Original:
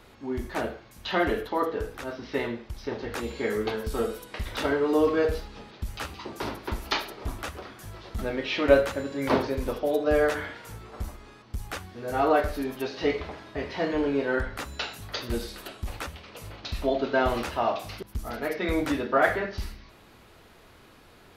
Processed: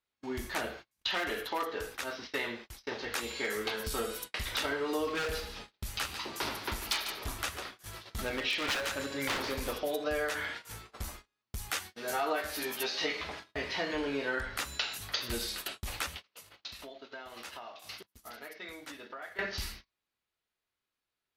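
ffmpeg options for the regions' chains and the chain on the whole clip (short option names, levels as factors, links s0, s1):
-filter_complex "[0:a]asettb=1/sr,asplit=3[s0][s1][s2];[s0]atrim=end=1.114[s3];[s1]atrim=start=1.11:end=3.8,asetpts=PTS-STARTPTS,afade=t=in:d=0.004:c=qsin,afade=t=out:st=2.686:d=0.004:c=qsin,asoftclip=type=hard:threshold=0.1,lowshelf=f=190:g=-7[s4];[s2]atrim=start=3.796[s5];[s3][s4]acrossfade=d=0.004:c1=hsin:c2=qsin[s6];[s6][s5]acrossfade=d=0.004:c1=qsin:c2=hsin,asettb=1/sr,asplit=3[s7][s8][s9];[s7]atrim=end=5.154[s10];[s8]atrim=start=5.15:end=9.76,asetpts=PTS-STARTPTS,afade=t=in:d=0.004:c=qsin,afade=t=out:st=4.606:d=0.004:c=qsin,aeval=exprs='0.0841*(abs(mod(val(0)/0.0841+3,4)-2)-1)':c=same,aecho=1:1:143:0.237,atrim=end_sample=203301[s11];[s9]atrim=start=9.756[s12];[s10][s11]acrossfade=d=0.004:c1=hsin:c2=qsin[s13];[s13][s12]acrossfade=d=0.004:c1=qsin:c2=hsin,asettb=1/sr,asplit=3[s14][s15][s16];[s14]atrim=end=11.704[s17];[s15]atrim=start=11.7:end=13.24,asetpts=PTS-STARTPTS,afade=t=in:d=0.004:c=qsin,afade=t=out:st=1.536:d=0.004:c=qsin,highpass=f=220:p=1,highshelf=f=3600:g=2,asplit=2[s18][s19];[s19]adelay=13,volume=0.708[s20];[s18][s20]amix=inputs=2:normalize=0,atrim=end_sample=67914[s21];[s16]atrim=start=13.236[s22];[s17][s21]acrossfade=d=0.004:c1=hsin:c2=qsin[s23];[s23][s22]acrossfade=d=0.004:c1=qsin:c2=hsin,asettb=1/sr,asplit=3[s24][s25][s26];[s24]atrim=end=16.174[s27];[s25]atrim=start=16.17:end=19.39,asetpts=PTS-STARTPTS,afade=t=in:d=0.004:c=qsin,afade=t=out:st=3.216:d=0.004:c=qsin,highpass=f=190:p=1,bandreject=f=2400:w=29,acompressor=threshold=0.0126:ratio=16:attack=3.2:release=140:knee=1:detection=peak[s28];[s26]atrim=start=19.386[s29];[s27][s28]acrossfade=d=0.004:c1=hsin:c2=qsin[s30];[s30][s29]acrossfade=d=0.004:c1=qsin:c2=hsin,agate=range=0.0158:threshold=0.00794:ratio=16:detection=peak,tiltshelf=f=1200:g=-7,acompressor=threshold=0.0316:ratio=4"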